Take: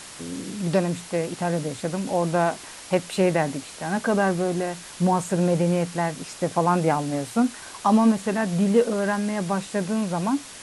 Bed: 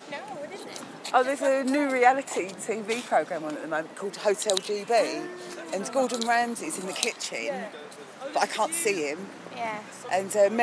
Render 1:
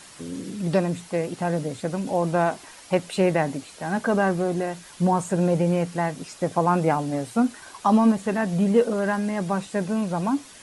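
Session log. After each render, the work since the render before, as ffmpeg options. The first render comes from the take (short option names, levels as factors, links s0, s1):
-af "afftdn=nr=7:nf=-41"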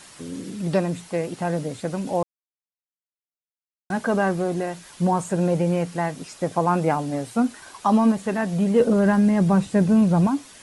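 -filter_complex "[0:a]asettb=1/sr,asplit=3[s0][s1][s2];[s0]atrim=end=8.804[s3];[s1]atrim=start=8.8:end=10.27,asetpts=PTS-STARTPTS,afade=t=in:d=0.004:c=qsin,afade=t=out:st=1.466:d=0.004:c=qsin,equalizer=f=78:w=0.31:g=14[s4];[s2]atrim=start=10.266[s5];[s3][s4]acrossfade=d=0.004:c1=hsin:c2=qsin[s6];[s6][s5]acrossfade=d=0.004:c1=qsin:c2=hsin,asplit=3[s7][s8][s9];[s7]atrim=end=2.23,asetpts=PTS-STARTPTS,afade=t=out:st=2.226:d=0.004:c=hsin[s10];[s8]atrim=start=2.23:end=3.9,asetpts=PTS-STARTPTS,volume=0[s11];[s9]atrim=start=3.9,asetpts=PTS-STARTPTS,afade=t=in:d=0.004:c=hsin[s12];[s10][s11][s12]concat=n=3:v=0:a=1"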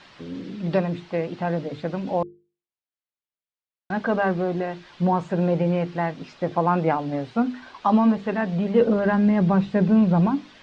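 -af "lowpass=f=4200:w=0.5412,lowpass=f=4200:w=1.3066,bandreject=f=50:t=h:w=6,bandreject=f=100:t=h:w=6,bandreject=f=150:t=h:w=6,bandreject=f=200:t=h:w=6,bandreject=f=250:t=h:w=6,bandreject=f=300:t=h:w=6,bandreject=f=350:t=h:w=6,bandreject=f=400:t=h:w=6,bandreject=f=450:t=h:w=6"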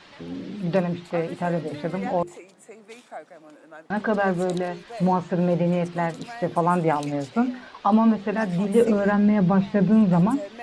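-filter_complex "[1:a]volume=0.178[s0];[0:a][s0]amix=inputs=2:normalize=0"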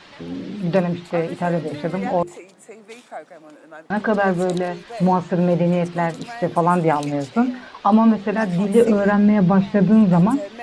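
-af "volume=1.58"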